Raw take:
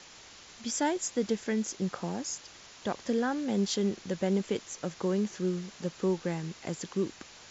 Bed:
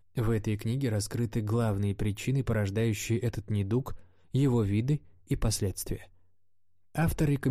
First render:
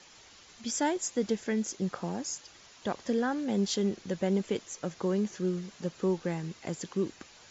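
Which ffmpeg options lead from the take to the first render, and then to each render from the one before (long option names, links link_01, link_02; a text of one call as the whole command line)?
ffmpeg -i in.wav -af "afftdn=noise_reduction=6:noise_floor=-52" out.wav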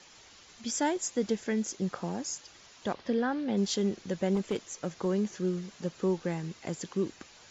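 ffmpeg -i in.wav -filter_complex "[0:a]asettb=1/sr,asplit=3[link_01][link_02][link_03];[link_01]atrim=end=2.934[link_04];[link_02]atrim=start=2.93:end=3.57,asetpts=PTS-STARTPTS,afade=type=in:duration=0.004:curve=qsin,afade=type=out:start_time=0.636:duration=0.004:curve=qsin,lowpass=frequency=4800:width=0.5412,lowpass=frequency=4800:width=1.3066[link_05];[link_03]atrim=start=3.566[link_06];[link_04][link_05]acrossfade=duration=0.004:curve1=hsin:curve2=qsin[link_07];[link_07][link_06]acrossfade=duration=0.004:curve1=qsin:curve2=hsin,asettb=1/sr,asplit=3[link_08][link_09][link_10];[link_08]atrim=end=4.354[link_11];[link_09]atrim=start=4.35:end=5.06,asetpts=PTS-STARTPTS,afade=type=in:duration=0.004:curve=qsin,afade=type=out:start_time=0.706:duration=0.004:curve=qsin,asoftclip=type=hard:threshold=-24dB[link_12];[link_10]atrim=start=5.056[link_13];[link_11][link_12]acrossfade=duration=0.004:curve1=hsin:curve2=qsin[link_14];[link_14][link_13]acrossfade=duration=0.004:curve1=qsin:curve2=hsin" out.wav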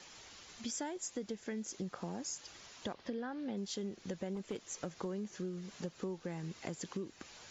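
ffmpeg -i in.wav -af "acompressor=threshold=-38dB:ratio=6" out.wav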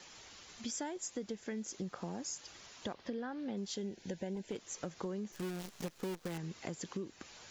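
ffmpeg -i in.wav -filter_complex "[0:a]asettb=1/sr,asplit=3[link_01][link_02][link_03];[link_01]atrim=end=3.774[link_04];[link_02]atrim=start=3.77:end=4.52,asetpts=PTS-STARTPTS,afade=type=in:duration=0.004:curve=qsin,afade=type=out:start_time=0.746:duration=0.004:curve=qsin,asuperstop=centerf=1200:order=8:qfactor=3.1[link_05];[link_03]atrim=start=4.516[link_06];[link_04][link_05]acrossfade=duration=0.004:curve1=hsin:curve2=qsin[link_07];[link_07][link_06]acrossfade=duration=0.004:curve1=qsin:curve2=hsin,asettb=1/sr,asplit=3[link_08][link_09][link_10];[link_08]atrim=end=5.324[link_11];[link_09]atrim=start=5.32:end=6.38,asetpts=PTS-STARTPTS,afade=type=in:duration=0.004:curve=qsin,afade=type=out:start_time=1.056:duration=0.004:curve=qsin,acrusher=bits=8:dc=4:mix=0:aa=0.000001[link_12];[link_10]atrim=start=6.376[link_13];[link_11][link_12]acrossfade=duration=0.004:curve1=hsin:curve2=qsin[link_14];[link_14][link_13]acrossfade=duration=0.004:curve1=qsin:curve2=hsin" out.wav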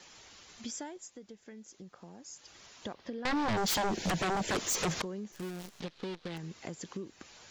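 ffmpeg -i in.wav -filter_complex "[0:a]asettb=1/sr,asplit=3[link_01][link_02][link_03];[link_01]atrim=end=3.254[link_04];[link_02]atrim=start=3.25:end=5.02,asetpts=PTS-STARTPTS,afade=type=in:duration=0.004:curve=qsin,afade=type=out:start_time=1.766:duration=0.004:curve=qsin,aeval=exprs='0.0447*sin(PI/2*6.31*val(0)/0.0447)':channel_layout=same[link_05];[link_03]atrim=start=5.016[link_06];[link_04][link_05]acrossfade=duration=0.004:curve1=hsin:curve2=qsin[link_07];[link_07][link_06]acrossfade=duration=0.004:curve1=qsin:curve2=hsin,asettb=1/sr,asplit=3[link_08][link_09][link_10];[link_08]atrim=end=5.804[link_11];[link_09]atrim=start=5.8:end=6.37,asetpts=PTS-STARTPTS,afade=type=in:duration=0.004:curve=qsin,afade=type=out:start_time=0.566:duration=0.004:curve=qsin,lowpass=frequency=3900:width_type=q:width=2.2[link_12];[link_10]atrim=start=6.366[link_13];[link_11][link_12]acrossfade=duration=0.004:curve1=hsin:curve2=qsin[link_14];[link_14][link_13]acrossfade=duration=0.004:curve1=qsin:curve2=hsin,asplit=3[link_15][link_16][link_17];[link_15]atrim=end=1.12,asetpts=PTS-STARTPTS,afade=type=out:start_time=0.72:duration=0.4:silence=0.354813[link_18];[link_16]atrim=start=1.12:end=2.23,asetpts=PTS-STARTPTS,volume=-9dB[link_19];[link_17]atrim=start=2.23,asetpts=PTS-STARTPTS,afade=type=in:duration=0.4:silence=0.354813[link_20];[link_18][link_19][link_20]concat=n=3:v=0:a=1" out.wav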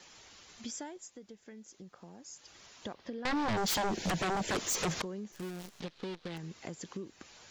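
ffmpeg -i in.wav -af "volume=-1dB" out.wav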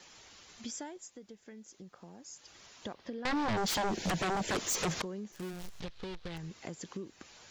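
ffmpeg -i in.wav -filter_complex "[0:a]asettb=1/sr,asplit=3[link_01][link_02][link_03];[link_01]atrim=end=3.474[link_04];[link_02]atrim=start=3.47:end=3.87,asetpts=PTS-STARTPTS,afade=type=in:duration=0.004:curve=qsin,afade=type=out:start_time=0.396:duration=0.004:curve=qsin,highshelf=frequency=9900:gain=-6[link_05];[link_03]atrim=start=3.866[link_06];[link_04][link_05]acrossfade=duration=0.004:curve1=hsin:curve2=qsin[link_07];[link_07][link_06]acrossfade=duration=0.004:curve1=qsin:curve2=hsin,asplit=3[link_08][link_09][link_10];[link_08]afade=type=out:start_time=5.52:duration=0.02[link_11];[link_09]asubboost=boost=8:cutoff=80,afade=type=in:start_time=5.52:duration=0.02,afade=type=out:start_time=6.5:duration=0.02[link_12];[link_10]afade=type=in:start_time=6.5:duration=0.02[link_13];[link_11][link_12][link_13]amix=inputs=3:normalize=0" out.wav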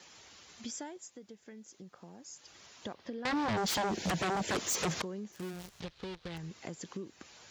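ffmpeg -i in.wav -af "highpass=53" out.wav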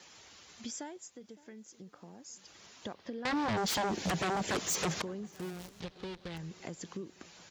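ffmpeg -i in.wav -filter_complex "[0:a]asplit=2[link_01][link_02];[link_02]adelay=563,lowpass=frequency=1300:poles=1,volume=-19.5dB,asplit=2[link_03][link_04];[link_04]adelay=563,lowpass=frequency=1300:poles=1,volume=0.53,asplit=2[link_05][link_06];[link_06]adelay=563,lowpass=frequency=1300:poles=1,volume=0.53,asplit=2[link_07][link_08];[link_08]adelay=563,lowpass=frequency=1300:poles=1,volume=0.53[link_09];[link_01][link_03][link_05][link_07][link_09]amix=inputs=5:normalize=0" out.wav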